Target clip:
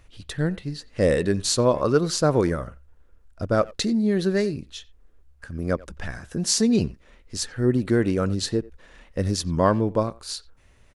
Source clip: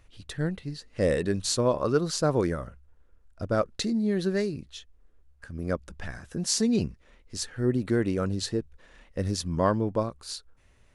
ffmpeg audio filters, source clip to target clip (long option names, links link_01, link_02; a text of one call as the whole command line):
ffmpeg -i in.wav -filter_complex "[0:a]asplit=2[link_01][link_02];[link_02]adelay=90,highpass=300,lowpass=3400,asoftclip=type=hard:threshold=-20.5dB,volume=-20dB[link_03];[link_01][link_03]amix=inputs=2:normalize=0,volume=4.5dB" out.wav